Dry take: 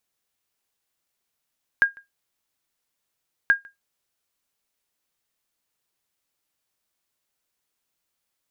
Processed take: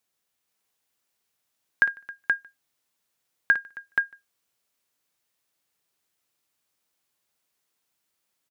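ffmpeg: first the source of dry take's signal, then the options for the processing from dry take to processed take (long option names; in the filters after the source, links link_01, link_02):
-f lavfi -i "aevalsrc='0.376*(sin(2*PI*1620*mod(t,1.68))*exp(-6.91*mod(t,1.68)/0.16)+0.0398*sin(2*PI*1620*max(mod(t,1.68)-0.15,0))*exp(-6.91*max(mod(t,1.68)-0.15,0)/0.16))':duration=3.36:sample_rate=44100"
-af "highpass=74,aecho=1:1:56|269|477:0.251|0.1|0.668"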